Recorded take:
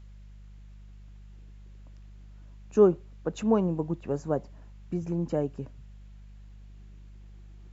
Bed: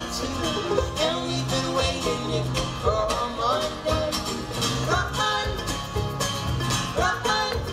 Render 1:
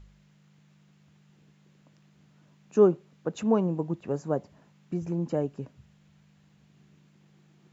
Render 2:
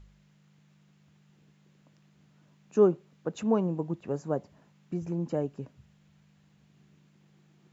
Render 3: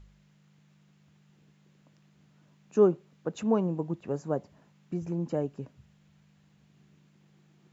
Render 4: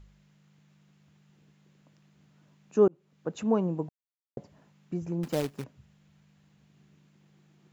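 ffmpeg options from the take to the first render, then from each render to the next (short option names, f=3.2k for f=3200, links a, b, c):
-af "bandreject=f=50:t=h:w=4,bandreject=f=100:t=h:w=4"
-af "volume=-2dB"
-af anull
-filter_complex "[0:a]asettb=1/sr,asplit=3[a][b][c];[a]atrim=end=5.234[d];[b]atrim=start=5.23:end=5.64,asetpts=PTS-STARTPTS,afade=t=in:d=0.004:c=qsin,afade=t=out:st=0.406:d=0.004:c=qsin,acrusher=bits=2:mode=log:mix=0:aa=0.000001[e];[c]atrim=start=5.636[f];[d][e]acrossfade=d=0.004:c1=hsin:c2=qsin[g];[g][f]acrossfade=d=0.004:c1=qsin:c2=hsin,asplit=4[h][i][j][k];[h]atrim=end=2.88,asetpts=PTS-STARTPTS,afade=t=out:st=2.876:d=0.004:c=hsin[l];[i]atrim=start=2.88:end=3.89,asetpts=PTS-STARTPTS,afade=t=in:d=0.43,afade=t=out:st=1.006:d=0.004:c=hsin[m];[j]atrim=start=3.89:end=4.37,asetpts=PTS-STARTPTS,volume=0[n];[k]atrim=start=4.37,asetpts=PTS-STARTPTS,afade=t=in:d=0.004:c=hsin[o];[l][m][n][o]concat=n=4:v=0:a=1"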